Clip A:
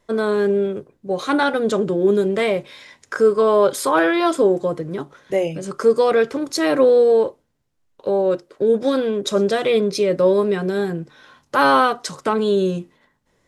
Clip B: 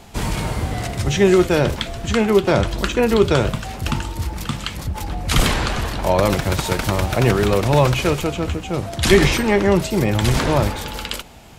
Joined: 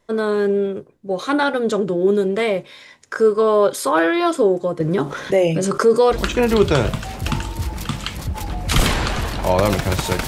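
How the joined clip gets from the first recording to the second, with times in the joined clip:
clip A
4.8–6.17 fast leveller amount 50%
6.13 switch to clip B from 2.73 s, crossfade 0.08 s

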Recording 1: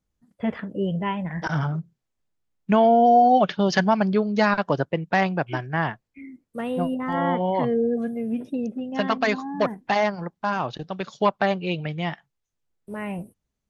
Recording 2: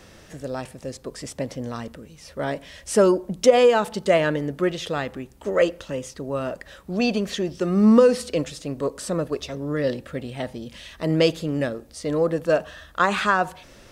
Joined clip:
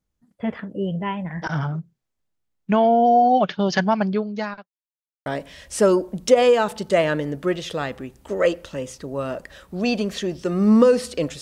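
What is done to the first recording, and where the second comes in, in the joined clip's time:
recording 1
4.06–4.68 fade out linear
4.68–5.26 mute
5.26 switch to recording 2 from 2.42 s

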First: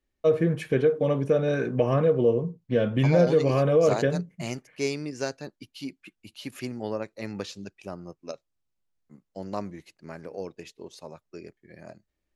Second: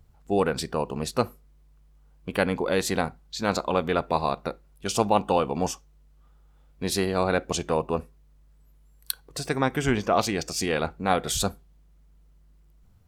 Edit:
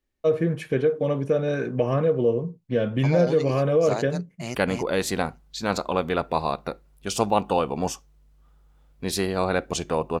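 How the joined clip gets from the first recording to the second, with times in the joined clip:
first
4.27–4.55 echo throw 0.28 s, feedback 15%, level -2.5 dB
4.55 switch to second from 2.34 s

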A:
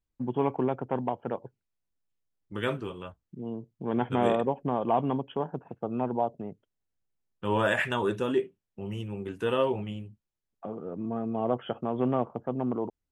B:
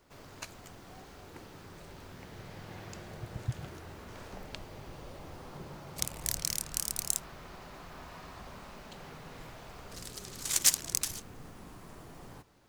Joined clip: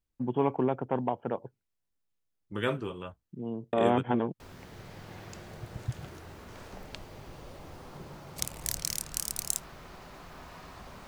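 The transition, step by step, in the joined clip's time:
A
3.73–4.4 reverse
4.4 switch to B from 2 s

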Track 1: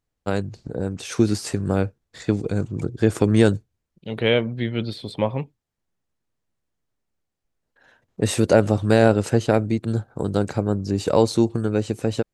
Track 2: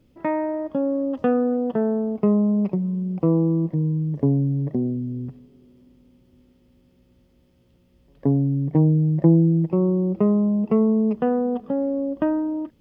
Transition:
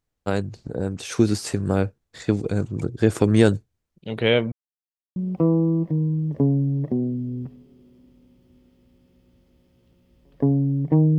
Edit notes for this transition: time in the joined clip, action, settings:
track 1
4.52–5.16 mute
5.16 switch to track 2 from 2.99 s

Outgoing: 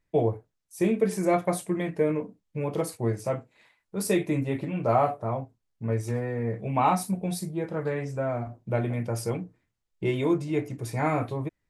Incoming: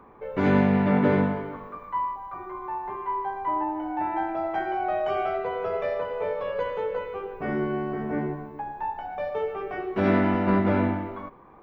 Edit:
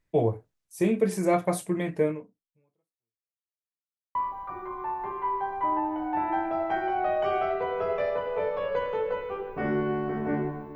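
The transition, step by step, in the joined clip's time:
outgoing
2.05–3.48 fade out exponential
3.48–4.15 mute
4.15 switch to incoming from 1.99 s

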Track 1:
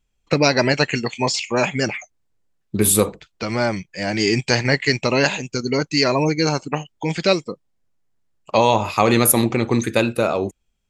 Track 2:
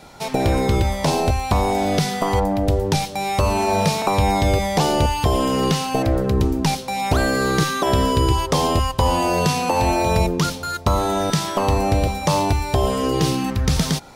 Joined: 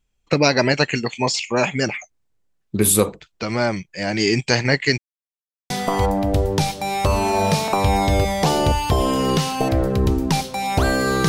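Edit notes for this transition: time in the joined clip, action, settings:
track 1
4.98–5.7 mute
5.7 switch to track 2 from 2.04 s

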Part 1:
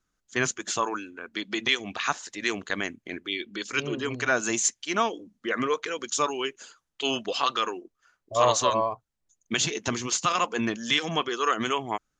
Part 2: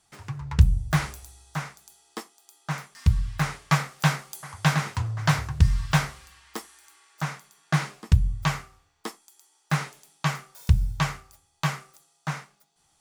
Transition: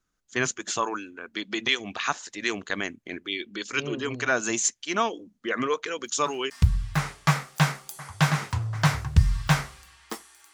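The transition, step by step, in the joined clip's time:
part 1
6.05 add part 2 from 2.49 s 0.45 s -17 dB
6.5 switch to part 2 from 2.94 s

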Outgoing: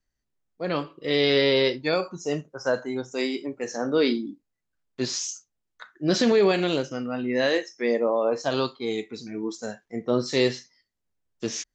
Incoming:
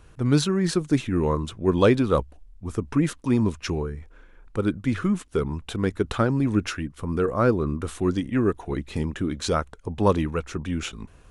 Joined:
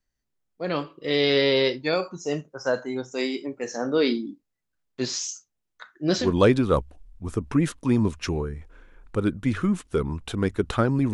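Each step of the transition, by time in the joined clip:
outgoing
6.23 switch to incoming from 1.64 s, crossfade 0.20 s

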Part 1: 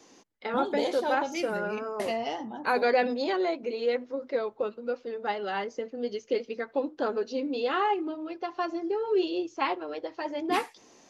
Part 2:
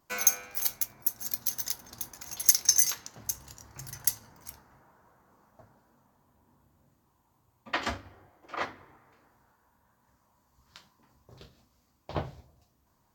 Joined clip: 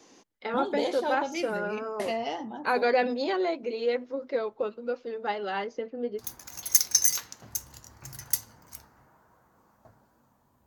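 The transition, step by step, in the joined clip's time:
part 1
5.66–6.24 LPF 6500 Hz -> 1100 Hz
6.2 switch to part 2 from 1.94 s, crossfade 0.08 s

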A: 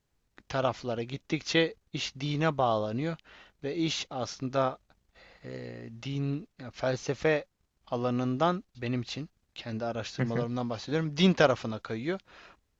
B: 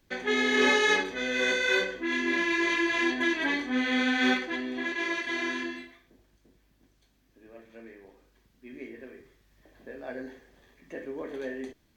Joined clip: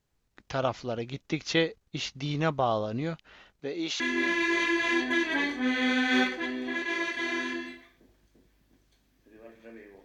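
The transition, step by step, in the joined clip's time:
A
3.59–4 HPF 140 Hz -> 630 Hz
4 switch to B from 2.1 s

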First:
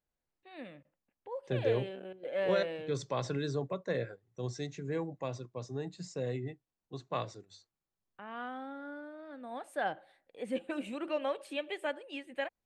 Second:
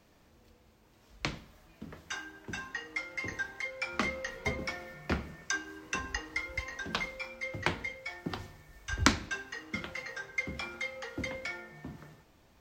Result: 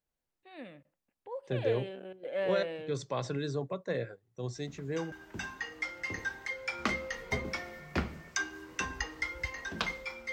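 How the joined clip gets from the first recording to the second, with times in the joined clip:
first
4.55 add second from 1.69 s 0.57 s -8 dB
5.12 switch to second from 2.26 s

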